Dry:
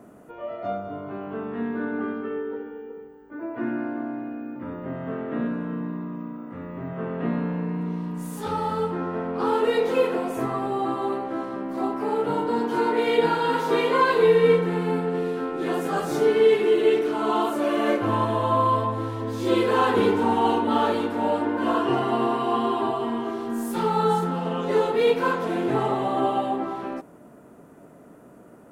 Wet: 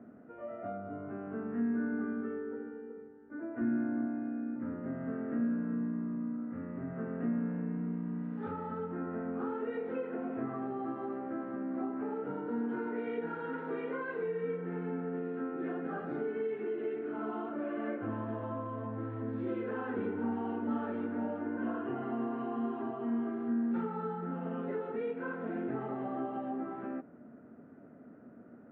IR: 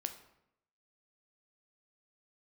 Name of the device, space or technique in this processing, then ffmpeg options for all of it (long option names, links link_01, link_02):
bass amplifier: -filter_complex "[0:a]acompressor=threshold=-28dB:ratio=3,highpass=73,equalizer=frequency=96:width_type=q:width=4:gain=5,equalizer=frequency=240:width_type=q:width=4:gain=10,equalizer=frequency=990:width_type=q:width=4:gain=-8,equalizer=frequency=1500:width_type=q:width=4:gain=4,lowpass=frequency=2100:width=0.5412,lowpass=frequency=2100:width=1.3066,asettb=1/sr,asplit=3[link_01][link_02][link_03];[link_01]atrim=end=3.614[link_04];[link_02]atrim=start=3.61:end=4.07,asetpts=PTS-STARTPTS,afade=type=in:duration=0.004:curve=qsin,afade=type=out:start_time=0.456:duration=0.004:curve=qsin,equalizer=frequency=79:width=0.78:gain=11.5[link_05];[link_03]atrim=start=4.066[link_06];[link_04][link_05]acrossfade=duration=0.004:curve1=hsin:curve2=qsin[link_07];[link_07][link_06]acrossfade=duration=0.004:curve1=qsin:curve2=hsin,volume=-8.5dB"